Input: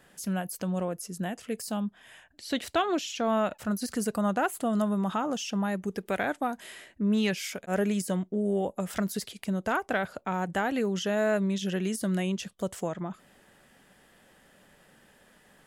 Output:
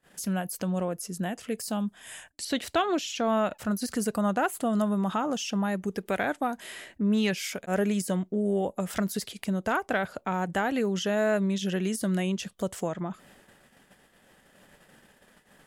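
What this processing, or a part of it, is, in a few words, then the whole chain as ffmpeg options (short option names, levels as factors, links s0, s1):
parallel compression: -filter_complex "[0:a]agate=range=0.0631:threshold=0.00126:ratio=16:detection=peak,asettb=1/sr,asplit=3[s0][s1][s2];[s0]atrim=end=1.804[s3];[s1]atrim=start=1.8:end=2.45,asetpts=PTS-STARTPTS,afade=t=in:d=0.004:c=qsin,afade=t=out:st=0.646:d=0.004:c=qsin,equalizer=f=8800:w=0.89:g=14.5[s4];[s2]atrim=start=2.446[s5];[s3][s4]acrossfade=d=0.004:c1=hsin:c2=qsin[s6];[s6][s5]acrossfade=d=0.004:c1=qsin:c2=hsin,asplit=2[s7][s8];[s8]acompressor=threshold=0.00562:ratio=6,volume=1[s9];[s7][s9]amix=inputs=2:normalize=0"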